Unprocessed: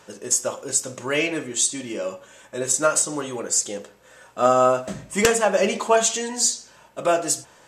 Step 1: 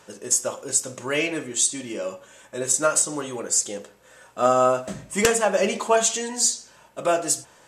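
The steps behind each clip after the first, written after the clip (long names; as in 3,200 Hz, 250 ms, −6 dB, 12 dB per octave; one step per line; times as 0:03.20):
parametric band 10,000 Hz +3.5 dB 0.65 octaves
level −1.5 dB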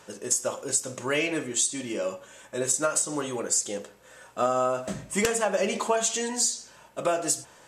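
downward compressor, threshold −21 dBFS, peak gain reduction 8 dB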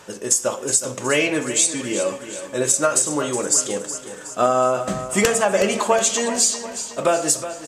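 repeating echo 368 ms, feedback 50%, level −12 dB
level +7 dB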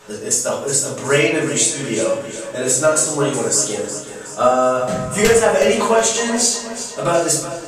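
rectangular room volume 57 cubic metres, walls mixed, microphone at 1.2 metres
level −3 dB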